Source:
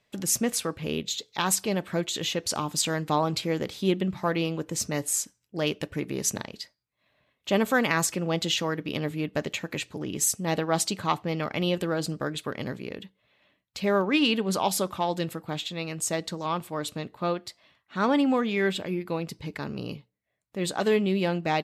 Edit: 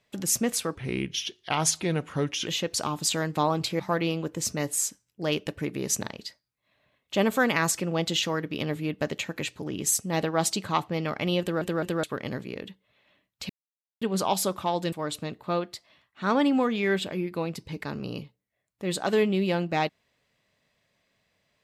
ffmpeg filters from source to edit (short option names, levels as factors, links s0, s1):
-filter_complex "[0:a]asplit=10[s0][s1][s2][s3][s4][s5][s6][s7][s8][s9];[s0]atrim=end=0.754[s10];[s1]atrim=start=0.75:end=2.19,asetpts=PTS-STARTPTS,asetrate=37044,aresample=44100[s11];[s2]atrim=start=2.186:end=3.522[s12];[s3]atrim=start=4.138:end=11.962[s13];[s4]atrim=start=11.748:end=11.962[s14];[s5]atrim=start=11.748:end=11.962[s15];[s6]atrim=start=12.378:end=13.84,asetpts=PTS-STARTPTS,afade=t=out:st=1.458:d=0.004:c=hsin[s16];[s7]atrim=start=13.84:end=14.36,asetpts=PTS-STARTPTS,volume=0[s17];[s8]atrim=start=14.36:end=15.272,asetpts=PTS-STARTPTS,afade=t=in:d=0.004:c=hsin[s18];[s9]atrim=start=16.658[s19];[s10][s11]acrossfade=d=0.004:c1=hsin:c2=hsin[s20];[s20][s12]acrossfade=d=0.004:c1=hsin:c2=hsin[s21];[s21][s13]acrossfade=d=0.004:c1=hsin:c2=hsin[s22];[s22][s14]acrossfade=d=0.004:c1=hsin:c2=hsin[s23];[s23][s15]acrossfade=d=0.004:c1=hsin:c2=hsin[s24];[s16][s17][s18]concat=n=3:v=0:a=1[s25];[s24][s25]acrossfade=d=0.004:c1=hsin:c2=hsin[s26];[s26][s19]acrossfade=d=0.004:c1=hsin:c2=hsin"